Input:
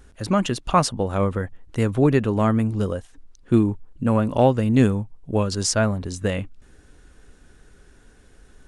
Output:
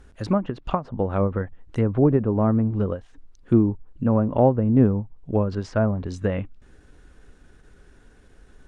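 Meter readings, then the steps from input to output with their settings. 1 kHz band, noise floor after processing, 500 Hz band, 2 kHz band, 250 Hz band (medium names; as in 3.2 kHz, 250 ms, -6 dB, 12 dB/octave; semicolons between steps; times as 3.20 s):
-4.5 dB, -53 dBFS, -0.5 dB, -8.0 dB, -0.5 dB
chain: low-pass that closes with the level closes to 950 Hz, closed at -16.5 dBFS; treble shelf 4.5 kHz -7.5 dB; endings held to a fixed fall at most 240 dB/s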